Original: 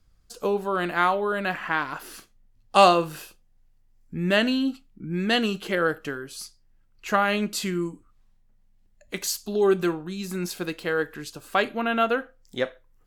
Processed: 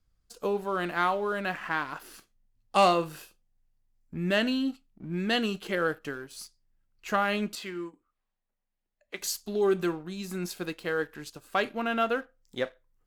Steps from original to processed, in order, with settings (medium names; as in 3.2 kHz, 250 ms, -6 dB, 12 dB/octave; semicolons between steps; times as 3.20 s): 7.55–9.19 s: three-band isolator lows -15 dB, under 320 Hz, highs -13 dB, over 4.2 kHz; waveshaping leveller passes 1; trim -8 dB